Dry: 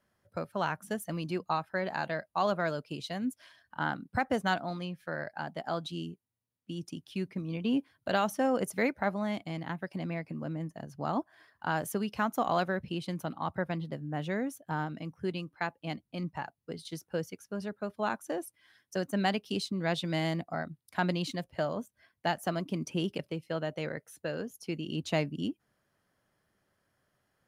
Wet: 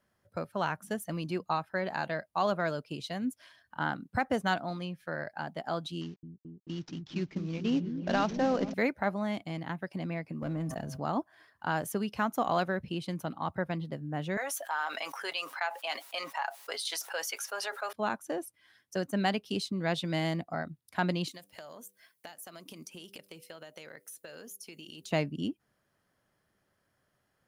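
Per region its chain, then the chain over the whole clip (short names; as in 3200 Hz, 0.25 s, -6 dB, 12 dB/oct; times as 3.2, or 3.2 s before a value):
6.01–8.74 CVSD 32 kbps + repeats that get brighter 0.219 s, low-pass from 200 Hz, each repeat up 1 oct, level -3 dB
10.42–11 sample leveller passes 1 + de-hum 128.9 Hz, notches 12 + sustainer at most 33 dB/s
14.37–17.93 HPF 700 Hz 24 dB/oct + comb 7.3 ms, depth 41% + fast leveller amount 70%
21.28–25.11 RIAA curve recording + compressor 16:1, threshold -42 dBFS + de-hum 98.39 Hz, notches 5
whole clip: dry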